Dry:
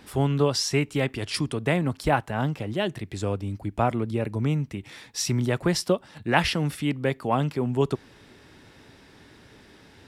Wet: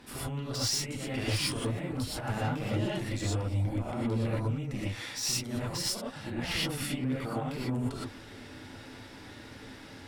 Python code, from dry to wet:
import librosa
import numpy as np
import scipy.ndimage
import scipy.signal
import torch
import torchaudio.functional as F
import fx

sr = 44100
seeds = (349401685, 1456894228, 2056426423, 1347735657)

y = fx.over_compress(x, sr, threshold_db=-28.0, ratio=-0.5)
y = fx.tube_stage(y, sr, drive_db=25.0, bias=0.25)
y = fx.rev_gated(y, sr, seeds[0], gate_ms=140, shape='rising', drr_db=-7.5)
y = y * 10.0 ** (-7.5 / 20.0)